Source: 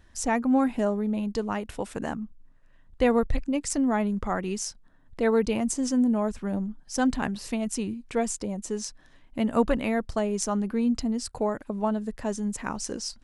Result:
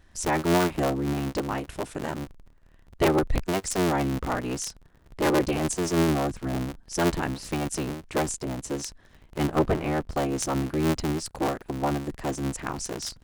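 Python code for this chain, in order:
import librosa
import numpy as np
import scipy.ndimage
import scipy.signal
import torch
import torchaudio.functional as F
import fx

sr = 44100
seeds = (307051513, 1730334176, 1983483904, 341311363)

y = fx.cycle_switch(x, sr, every=3, mode='inverted')
y = fx.high_shelf(y, sr, hz=2400.0, db=-9.0, at=(9.47, 10.11))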